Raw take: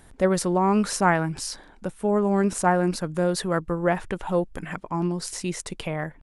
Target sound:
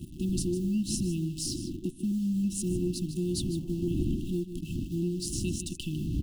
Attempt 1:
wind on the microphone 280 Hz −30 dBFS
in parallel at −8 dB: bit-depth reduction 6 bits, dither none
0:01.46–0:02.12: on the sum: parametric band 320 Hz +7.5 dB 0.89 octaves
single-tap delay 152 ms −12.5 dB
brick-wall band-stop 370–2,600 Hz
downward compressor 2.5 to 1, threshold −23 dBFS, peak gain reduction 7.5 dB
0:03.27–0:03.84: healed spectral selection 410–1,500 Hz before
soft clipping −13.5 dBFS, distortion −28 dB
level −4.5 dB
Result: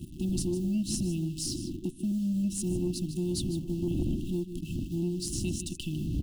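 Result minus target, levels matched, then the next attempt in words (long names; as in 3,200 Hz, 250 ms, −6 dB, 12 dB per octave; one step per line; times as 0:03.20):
soft clipping: distortion +16 dB
wind on the microphone 280 Hz −30 dBFS
in parallel at −8 dB: bit-depth reduction 6 bits, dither none
0:01.46–0:02.12: on the sum: parametric band 320 Hz +7.5 dB 0.89 octaves
single-tap delay 152 ms −12.5 dB
brick-wall band-stop 370–2,600 Hz
downward compressor 2.5 to 1, threshold −23 dBFS, peak gain reduction 7.5 dB
0:03.27–0:03.84: healed spectral selection 410–1,500 Hz before
soft clipping −5 dBFS, distortion −44 dB
level −4.5 dB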